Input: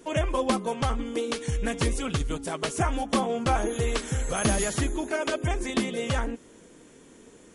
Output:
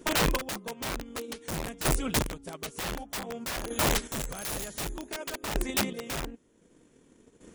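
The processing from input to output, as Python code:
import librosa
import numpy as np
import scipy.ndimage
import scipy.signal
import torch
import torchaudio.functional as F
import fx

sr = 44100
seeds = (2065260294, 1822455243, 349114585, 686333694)

y = fx.low_shelf(x, sr, hz=340.0, db=6.0)
y = fx.transient(y, sr, attack_db=7, sustain_db=-5)
y = fx.high_shelf(y, sr, hz=2800.0, db=3.0, at=(3.23, 5.56))
y = (np.mod(10.0 ** (17.0 / 20.0) * y + 1.0, 2.0) - 1.0) / 10.0 ** (17.0 / 20.0)
y = fx.chopper(y, sr, hz=0.54, depth_pct=65, duty_pct=20)
y = y * librosa.db_to_amplitude(-2.5)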